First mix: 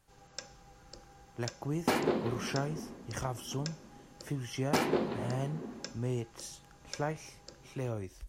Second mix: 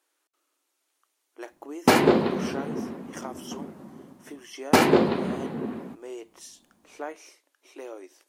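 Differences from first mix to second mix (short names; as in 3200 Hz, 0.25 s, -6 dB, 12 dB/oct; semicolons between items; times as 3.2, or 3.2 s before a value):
speech: add brick-wall FIR high-pass 270 Hz; first sound: muted; second sound +11.5 dB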